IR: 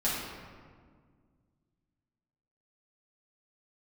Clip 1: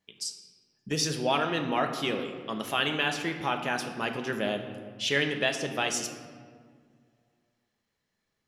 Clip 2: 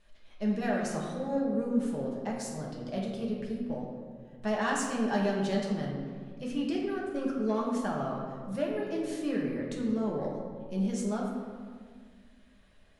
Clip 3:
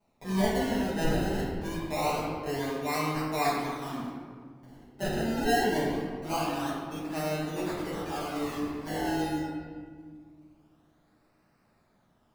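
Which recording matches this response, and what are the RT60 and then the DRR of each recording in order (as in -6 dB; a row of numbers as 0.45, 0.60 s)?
3; 1.8, 1.8, 1.8 s; 4.5, -3.5, -10.0 dB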